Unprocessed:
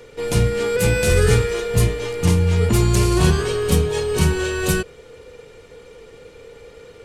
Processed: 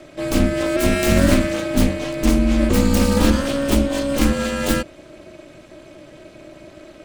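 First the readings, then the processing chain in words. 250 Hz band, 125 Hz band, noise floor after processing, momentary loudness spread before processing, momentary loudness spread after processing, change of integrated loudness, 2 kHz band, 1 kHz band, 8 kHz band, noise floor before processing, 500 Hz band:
+6.5 dB, −5.5 dB, −44 dBFS, 5 LU, 5 LU, 0.0 dB, −0.5 dB, +1.0 dB, −2.0 dB, −45 dBFS, −1.5 dB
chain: phase distortion by the signal itself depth 0.18 ms
ring modulation 140 Hz
level +3.5 dB

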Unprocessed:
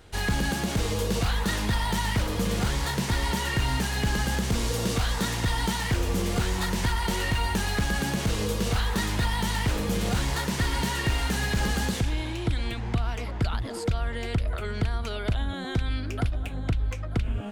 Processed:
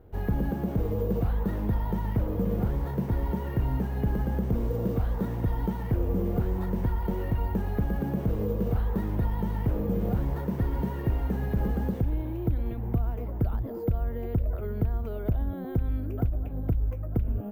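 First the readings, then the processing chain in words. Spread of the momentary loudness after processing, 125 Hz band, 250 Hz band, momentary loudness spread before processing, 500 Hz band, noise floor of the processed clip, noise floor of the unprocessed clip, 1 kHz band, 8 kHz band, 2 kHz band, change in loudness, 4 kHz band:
3 LU, 0.0 dB, 0.0 dB, 4 LU, −0.5 dB, −34 dBFS, −33 dBFS, −7.5 dB, below −25 dB, −16.5 dB, −2.0 dB, below −25 dB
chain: drawn EQ curve 510 Hz 0 dB, 4,300 Hz −28 dB, 7,600 Hz −25 dB
bad sample-rate conversion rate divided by 3×, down filtered, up hold

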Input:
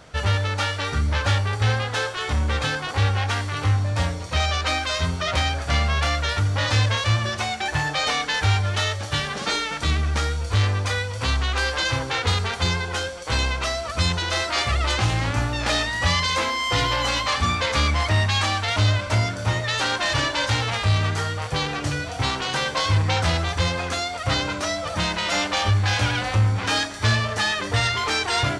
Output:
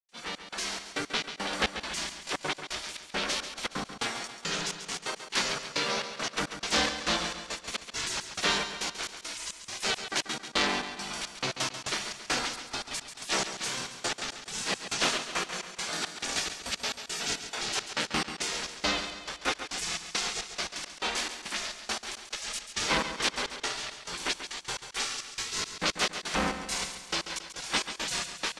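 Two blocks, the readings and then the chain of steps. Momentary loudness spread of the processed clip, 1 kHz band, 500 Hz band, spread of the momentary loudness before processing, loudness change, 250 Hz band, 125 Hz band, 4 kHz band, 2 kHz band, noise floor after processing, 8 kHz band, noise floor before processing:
8 LU, −10.0 dB, −9.5 dB, 5 LU, −9.0 dB, −8.5 dB, −27.0 dB, −6.5 dB, −8.5 dB, −51 dBFS, −1.0 dB, −31 dBFS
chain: gate on every frequency bin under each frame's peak −20 dB weak
automatic gain control gain up to 13 dB
gate pattern ".xxx..xxx..x.x." 172 BPM −60 dB
repeating echo 138 ms, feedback 52%, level −10 dB
highs frequency-modulated by the lows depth 0.18 ms
level −8.5 dB

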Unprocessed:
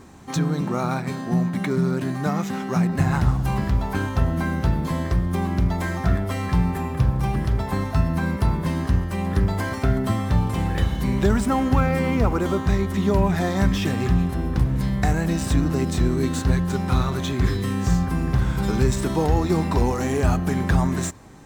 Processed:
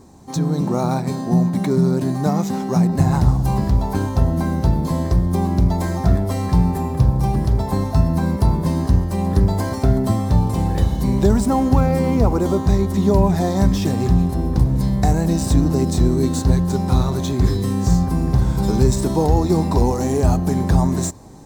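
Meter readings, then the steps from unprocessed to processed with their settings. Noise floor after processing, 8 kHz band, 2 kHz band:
−26 dBFS, +4.0 dB, −5.5 dB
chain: flat-topped bell 2,000 Hz −10 dB
automatic gain control gain up to 5.5 dB

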